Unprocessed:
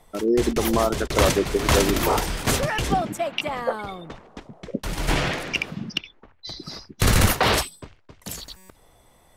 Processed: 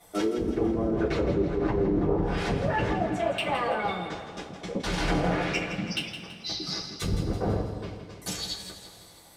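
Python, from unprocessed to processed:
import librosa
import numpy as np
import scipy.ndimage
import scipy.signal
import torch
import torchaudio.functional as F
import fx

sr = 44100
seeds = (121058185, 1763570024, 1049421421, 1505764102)

p1 = scipy.signal.sosfilt(scipy.signal.butter(2, 66.0, 'highpass', fs=sr, output='sos'), x)
p2 = fx.high_shelf(p1, sr, hz=4700.0, db=8.0)
p3 = fx.env_lowpass_down(p2, sr, base_hz=370.0, full_db=-16.5)
p4 = fx.over_compress(p3, sr, threshold_db=-24.0, ratio=-1.0)
p5 = 10.0 ** (-14.5 / 20.0) * np.tanh(p4 / 10.0 ** (-14.5 / 20.0))
p6 = p5 + fx.echo_feedback(p5, sr, ms=165, feedback_pct=50, wet_db=-10, dry=0)
p7 = fx.rev_double_slope(p6, sr, seeds[0], early_s=0.21, late_s=2.8, knee_db=-22, drr_db=-8.5)
y = F.gain(torch.from_numpy(p7), -8.5).numpy()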